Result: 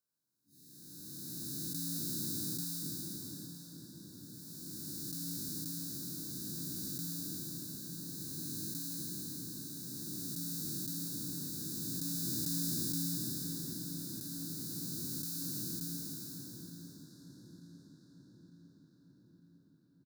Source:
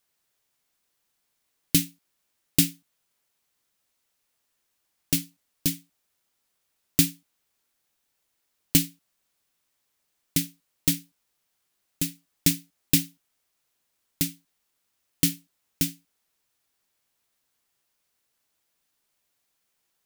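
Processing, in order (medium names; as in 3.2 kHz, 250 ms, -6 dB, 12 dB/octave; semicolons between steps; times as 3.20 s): spectral blur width 1290 ms; high-pass 110 Hz 12 dB/octave; spectral noise reduction 18 dB; Chebyshev band-stop 1.7–3.7 kHz, order 5; comb 2 ms, depth 38%; filtered feedback delay 902 ms, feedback 62%, low-pass 3.4 kHz, level -7.5 dB; trim +5 dB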